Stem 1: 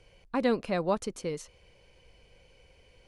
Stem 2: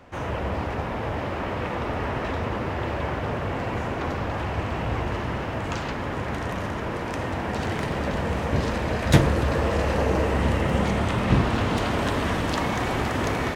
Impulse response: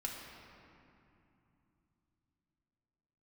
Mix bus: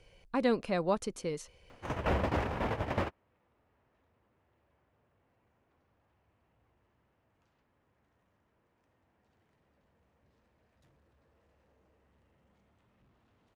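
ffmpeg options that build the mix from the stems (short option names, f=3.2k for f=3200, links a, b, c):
-filter_complex "[0:a]volume=-2dB,asplit=2[a][b];[1:a]asoftclip=type=tanh:threshold=-19.5dB,adelay=1700,volume=2dB[c];[b]apad=whole_len=672672[d];[c][d]sidechaingate=range=-47dB:threshold=-59dB:ratio=16:detection=peak[e];[a][e]amix=inputs=2:normalize=0"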